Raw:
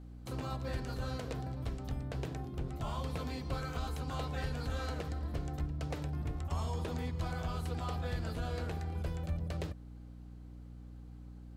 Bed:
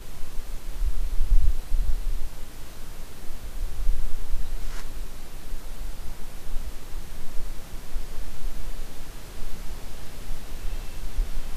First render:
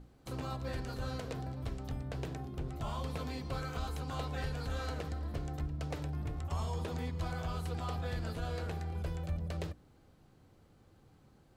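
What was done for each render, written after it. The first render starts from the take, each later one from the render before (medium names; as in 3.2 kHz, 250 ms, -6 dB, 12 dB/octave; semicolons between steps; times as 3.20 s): hum notches 60/120/180/240/300/360 Hz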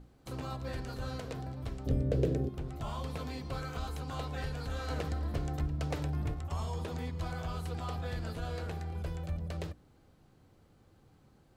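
1.86–2.49 s: resonant low shelf 660 Hz +9 dB, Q 3; 4.90–6.34 s: gain +4 dB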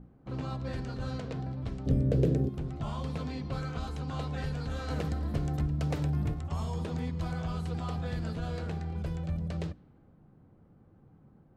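level-controlled noise filter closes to 1.3 kHz, open at -31 dBFS; peaking EQ 180 Hz +8 dB 1.3 oct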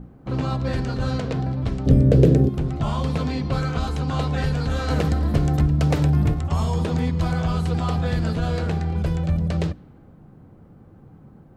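trim +11.5 dB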